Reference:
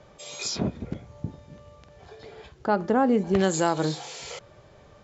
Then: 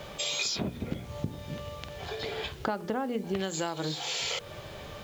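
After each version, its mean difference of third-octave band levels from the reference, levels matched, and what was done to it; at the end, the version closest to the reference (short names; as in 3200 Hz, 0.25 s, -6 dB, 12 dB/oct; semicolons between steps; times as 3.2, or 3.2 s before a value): 12.5 dB: bell 3200 Hz +8.5 dB 1.2 oct; notches 60/120/180/240/300/360/420/480 Hz; compressor 8:1, threshold -38 dBFS, peak gain reduction 21 dB; bit-crush 11-bit; gain +9 dB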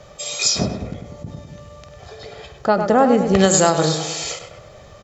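3.5 dB: high shelf 4400 Hz +9.5 dB; comb 1.6 ms, depth 38%; on a send: tape echo 0.101 s, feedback 58%, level -6.5 dB, low-pass 2300 Hz; on the sum: ending taper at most 120 dB/s; gain +7 dB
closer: second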